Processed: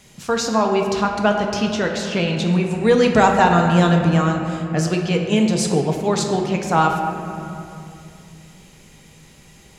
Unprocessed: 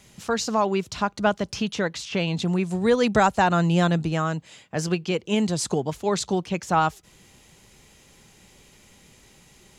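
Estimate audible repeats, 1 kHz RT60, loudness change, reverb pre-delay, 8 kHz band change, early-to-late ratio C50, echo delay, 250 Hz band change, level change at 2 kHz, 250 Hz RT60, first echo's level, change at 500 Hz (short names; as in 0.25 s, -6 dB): none, 2.5 s, +5.5 dB, 4 ms, +4.0 dB, 4.0 dB, none, +6.0 dB, +5.0 dB, 3.9 s, none, +6.0 dB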